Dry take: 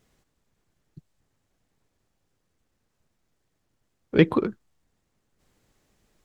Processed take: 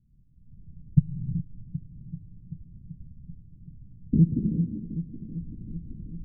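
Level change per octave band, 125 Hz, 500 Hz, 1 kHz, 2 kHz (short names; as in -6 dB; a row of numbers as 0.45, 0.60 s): +8.0 dB, -20.0 dB, under -40 dB, under -40 dB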